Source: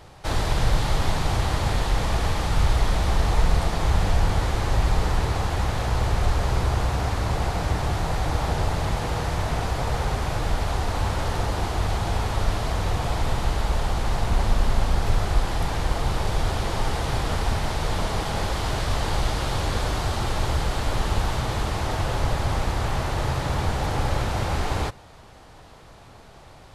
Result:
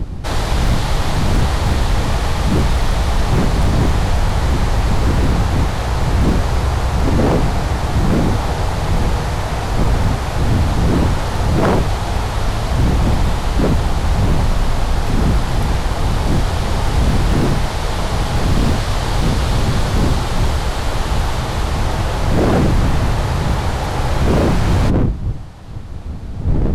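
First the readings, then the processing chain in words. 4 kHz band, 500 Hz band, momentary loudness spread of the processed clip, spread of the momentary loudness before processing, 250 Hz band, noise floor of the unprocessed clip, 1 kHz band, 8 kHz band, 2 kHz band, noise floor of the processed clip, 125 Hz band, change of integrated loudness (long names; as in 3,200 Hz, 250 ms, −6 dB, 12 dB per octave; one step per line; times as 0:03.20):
+5.5 dB, +8.0 dB, 5 LU, 3 LU, +12.5 dB, −47 dBFS, +5.5 dB, +5.5 dB, +6.0 dB, −23 dBFS, +8.5 dB, +8.0 dB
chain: wind on the microphone 96 Hz −17 dBFS
wave folding −13.5 dBFS
level +5.5 dB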